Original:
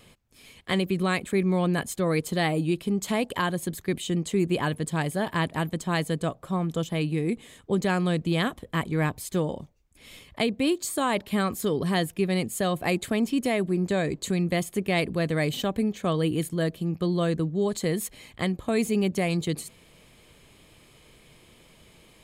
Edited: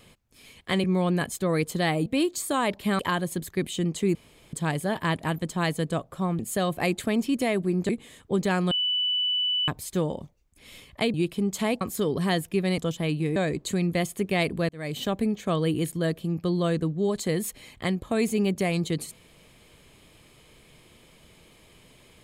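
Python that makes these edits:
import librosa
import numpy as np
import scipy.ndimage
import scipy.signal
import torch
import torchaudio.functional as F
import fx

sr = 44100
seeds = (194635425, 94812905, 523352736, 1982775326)

y = fx.edit(x, sr, fx.cut(start_s=0.84, length_s=0.57),
    fx.swap(start_s=2.63, length_s=0.67, other_s=10.53, other_length_s=0.93),
    fx.room_tone_fill(start_s=4.46, length_s=0.38),
    fx.swap(start_s=6.7, length_s=0.58, other_s=12.43, other_length_s=1.5),
    fx.bleep(start_s=8.1, length_s=0.97, hz=2980.0, db=-22.5),
    fx.fade_in_span(start_s=15.26, length_s=0.39), tone=tone)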